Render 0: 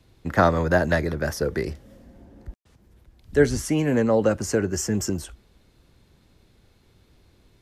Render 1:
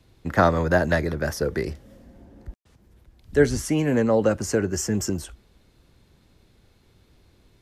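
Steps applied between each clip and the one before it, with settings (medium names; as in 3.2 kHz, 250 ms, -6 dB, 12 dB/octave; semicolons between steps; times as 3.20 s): no audible change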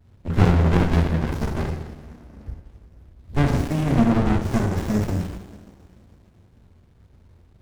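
two-slope reverb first 0.89 s, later 3 s, from -18 dB, DRR -2.5 dB; sliding maximum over 65 samples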